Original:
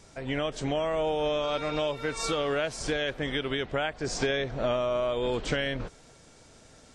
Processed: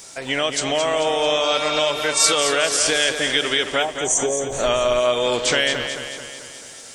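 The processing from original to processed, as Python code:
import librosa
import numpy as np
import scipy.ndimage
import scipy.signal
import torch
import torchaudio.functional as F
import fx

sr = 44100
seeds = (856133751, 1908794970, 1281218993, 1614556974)

y = fx.spec_box(x, sr, start_s=3.83, length_s=0.69, low_hz=1200.0, high_hz=5800.0, gain_db=-27)
y = fx.riaa(y, sr, side='recording')
y = fx.echo_feedback(y, sr, ms=219, feedback_pct=55, wet_db=-8)
y = fx.dmg_noise_colour(y, sr, seeds[0], colour='brown', level_db=-44.0, at=(4.49, 5.0), fade=0.02)
y = y * 10.0 ** (9.0 / 20.0)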